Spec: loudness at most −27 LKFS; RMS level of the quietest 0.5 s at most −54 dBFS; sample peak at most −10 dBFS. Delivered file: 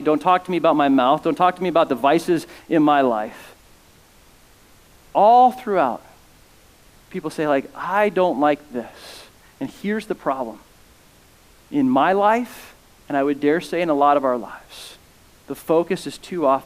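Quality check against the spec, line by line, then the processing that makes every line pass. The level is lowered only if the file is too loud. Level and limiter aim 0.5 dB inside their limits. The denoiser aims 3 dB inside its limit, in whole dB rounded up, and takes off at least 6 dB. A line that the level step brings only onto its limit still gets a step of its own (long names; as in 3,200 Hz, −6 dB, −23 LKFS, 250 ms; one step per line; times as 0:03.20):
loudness −19.0 LKFS: out of spec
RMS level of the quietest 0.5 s −51 dBFS: out of spec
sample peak −5.0 dBFS: out of spec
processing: level −8.5 dB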